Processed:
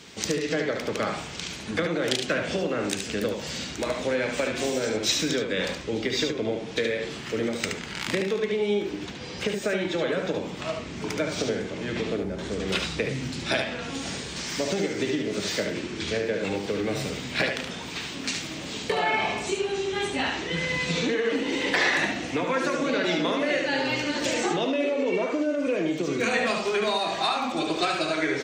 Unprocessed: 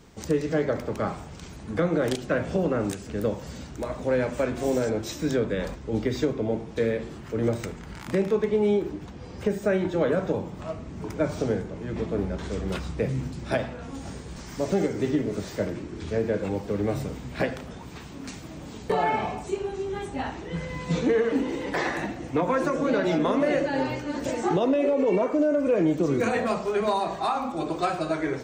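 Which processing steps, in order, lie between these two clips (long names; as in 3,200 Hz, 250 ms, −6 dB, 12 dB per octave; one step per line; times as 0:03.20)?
0:12.16–0:12.60: parametric band 3,400 Hz −10.5 dB 2.9 octaves
downward compressor, threshold −27 dBFS, peak gain reduction 8.5 dB
meter weighting curve D
single-tap delay 73 ms −5.5 dB
level +3.5 dB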